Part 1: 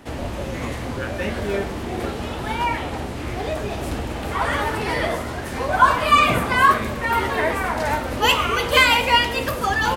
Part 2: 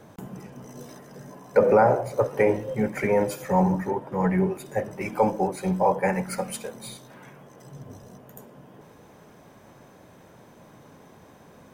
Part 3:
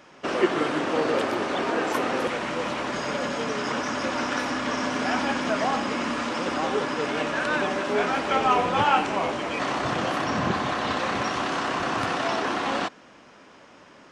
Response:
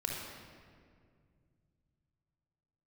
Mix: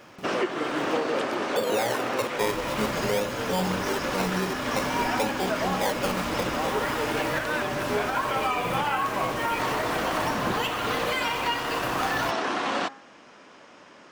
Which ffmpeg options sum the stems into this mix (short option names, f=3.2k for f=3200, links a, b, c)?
-filter_complex "[0:a]acrusher=bits=4:mix=0:aa=0.000001,aecho=1:1:6.4:0.65,adelay=2350,volume=-13dB,asplit=2[a][b];[b]volume=-4.5dB[c];[1:a]equalizer=f=570:w=0.35:g=5.5,dynaudnorm=f=130:g=11:m=11.5dB,acrusher=samples=21:mix=1:aa=0.000001:lfo=1:lforange=21:lforate=0.5,volume=-9.5dB[d];[2:a]lowshelf=f=120:g=-10.5,bandreject=f=135.6:t=h:w=4,bandreject=f=271.2:t=h:w=4,bandreject=f=406.8:t=h:w=4,bandreject=f=542.4:t=h:w=4,bandreject=f=678:t=h:w=4,bandreject=f=813.6:t=h:w=4,bandreject=f=949.2:t=h:w=4,bandreject=f=1.0848k:t=h:w=4,bandreject=f=1.2204k:t=h:w=4,bandreject=f=1.356k:t=h:w=4,bandreject=f=1.4916k:t=h:w=4,bandreject=f=1.6272k:t=h:w=4,bandreject=f=1.7628k:t=h:w=4,bandreject=f=1.8984k:t=h:w=4,bandreject=f=2.034k:t=h:w=4,volume=1dB[e];[3:a]atrim=start_sample=2205[f];[c][f]afir=irnorm=-1:irlink=0[g];[a][d][e][g]amix=inputs=4:normalize=0,alimiter=limit=-16dB:level=0:latency=1:release=468"